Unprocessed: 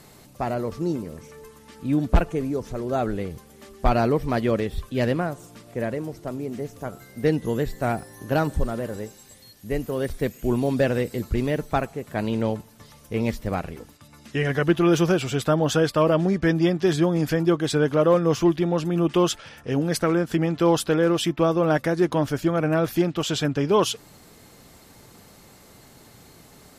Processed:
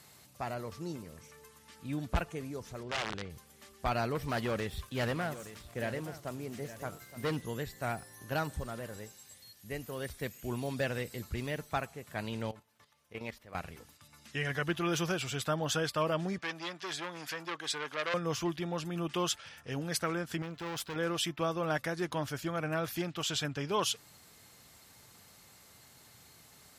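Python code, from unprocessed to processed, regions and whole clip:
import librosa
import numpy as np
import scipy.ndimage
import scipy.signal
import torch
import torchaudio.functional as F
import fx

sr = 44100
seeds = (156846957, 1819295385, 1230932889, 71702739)

y = fx.chain(x, sr, fx.overflow_wrap(gain_db=18.5),
    fx.air_absorb(metres=120.0), at=(2.83, 3.3))
y = fx.chain(y, sr, fx.leveller(passes=1),
    fx.overload_stage(gain_db=15.0),
    fx.echo_single(ms=869, db=-13.5), at=(4.15, 7.42))
y = fx.chain(y, sr, fx.level_steps(step_db=12),
    fx.bass_treble(bass_db=-8, treble_db=-8), at=(12.51, 13.55))
y = fx.chain(y, sr, fx.weighting(curve='A'),
    fx.transformer_sat(knee_hz=2000.0), at=(16.38, 18.14))
y = fx.chain(y, sr, fx.tube_stage(drive_db=23.0, bias=0.7),
    fx.resample_linear(factor=2), at=(20.42, 20.96))
y = scipy.signal.sosfilt(scipy.signal.butter(2, 81.0, 'highpass', fs=sr, output='sos'), y)
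y = fx.peak_eq(y, sr, hz=310.0, db=-11.0, octaves=2.8)
y = y * 10.0 ** (-4.5 / 20.0)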